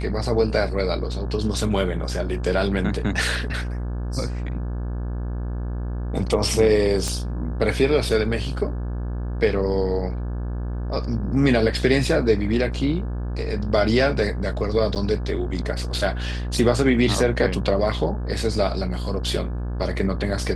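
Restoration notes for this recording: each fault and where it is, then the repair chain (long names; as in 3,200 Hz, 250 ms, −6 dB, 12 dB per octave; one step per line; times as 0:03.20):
mains buzz 60 Hz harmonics 29 −27 dBFS
0:07.08: click −13 dBFS
0:14.95–0:14.96: drop-out 8 ms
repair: click removal
hum removal 60 Hz, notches 29
repair the gap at 0:14.95, 8 ms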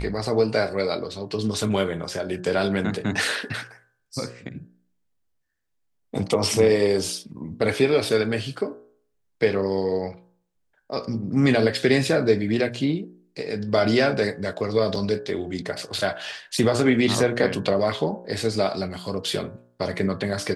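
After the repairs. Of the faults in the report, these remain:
0:07.08: click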